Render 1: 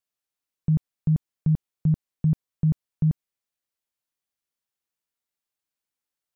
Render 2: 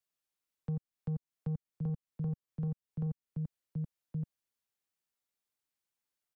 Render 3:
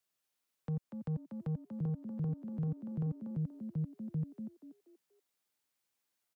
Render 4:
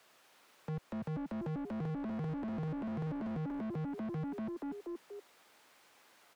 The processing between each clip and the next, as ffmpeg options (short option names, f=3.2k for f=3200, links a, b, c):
-filter_complex "[0:a]aecho=1:1:1120:0.316,asoftclip=type=tanh:threshold=-23dB,acrossover=split=140|310[a][b][c];[a]acompressor=threshold=-40dB:ratio=4[d];[b]acompressor=threshold=-34dB:ratio=4[e];[c]acompressor=threshold=-53dB:ratio=4[f];[d][e][f]amix=inputs=3:normalize=0,volume=-2.5dB"
-filter_complex "[0:a]highpass=f=93:p=1,alimiter=level_in=10dB:limit=-24dB:level=0:latency=1,volume=-10dB,asplit=5[a][b][c][d][e];[b]adelay=239,afreqshift=63,volume=-8dB[f];[c]adelay=478,afreqshift=126,volume=-18.2dB[g];[d]adelay=717,afreqshift=189,volume=-28.3dB[h];[e]adelay=956,afreqshift=252,volume=-38.5dB[i];[a][f][g][h][i]amix=inputs=5:normalize=0,volume=4.5dB"
-filter_complex "[0:a]asplit=2[a][b];[b]highpass=f=720:p=1,volume=43dB,asoftclip=type=tanh:threshold=-28.5dB[c];[a][c]amix=inputs=2:normalize=0,lowpass=f=1k:p=1,volume=-6dB,volume=-3.5dB"